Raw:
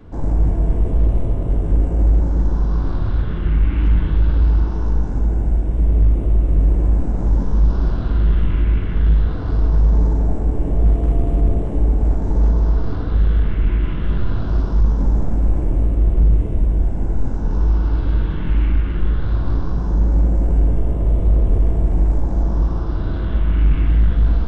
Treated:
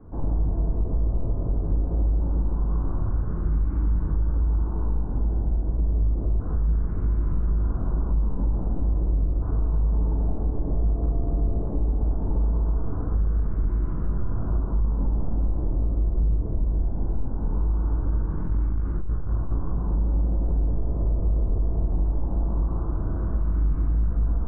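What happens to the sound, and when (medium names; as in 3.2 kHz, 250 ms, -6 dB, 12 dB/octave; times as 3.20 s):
6.40–9.42 s: reverse
18.42–19.51 s: transformer saturation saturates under 31 Hz
whole clip: compression, threshold -14 dBFS; Chebyshev low-pass 1.2 kHz, order 3; trim -4.5 dB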